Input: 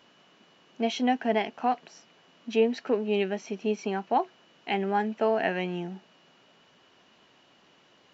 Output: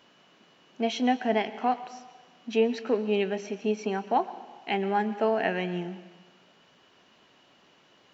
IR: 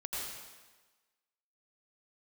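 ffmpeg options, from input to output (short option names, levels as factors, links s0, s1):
-filter_complex "[0:a]asplit=2[s0][s1];[1:a]atrim=start_sample=2205,adelay=28[s2];[s1][s2]afir=irnorm=-1:irlink=0,volume=0.168[s3];[s0][s3]amix=inputs=2:normalize=0"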